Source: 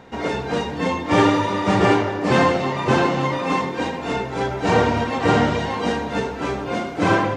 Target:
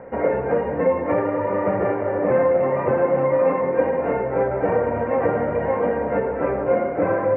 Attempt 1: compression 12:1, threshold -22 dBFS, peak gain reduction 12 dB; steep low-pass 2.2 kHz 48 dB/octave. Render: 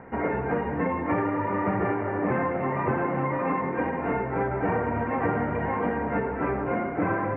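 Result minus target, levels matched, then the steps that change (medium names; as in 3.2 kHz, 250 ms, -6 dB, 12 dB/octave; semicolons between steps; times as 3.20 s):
500 Hz band -4.0 dB
add after steep low-pass: peaking EQ 540 Hz +15 dB 0.45 oct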